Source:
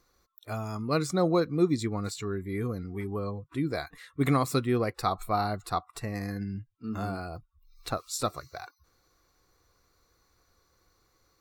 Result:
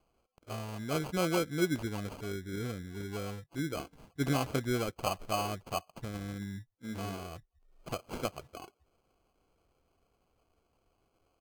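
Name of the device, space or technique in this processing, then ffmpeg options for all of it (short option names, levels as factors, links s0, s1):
crushed at another speed: -af "asetrate=35280,aresample=44100,acrusher=samples=30:mix=1:aa=0.000001,asetrate=55125,aresample=44100,volume=0.531"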